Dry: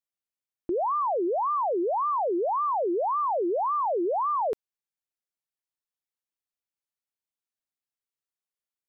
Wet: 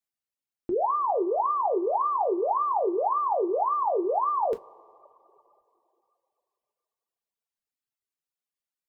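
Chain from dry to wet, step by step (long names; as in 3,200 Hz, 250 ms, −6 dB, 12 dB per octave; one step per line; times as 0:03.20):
coupled-rooms reverb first 0.26 s, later 2.8 s, from −17 dB, DRR 3.5 dB
reverb reduction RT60 1.4 s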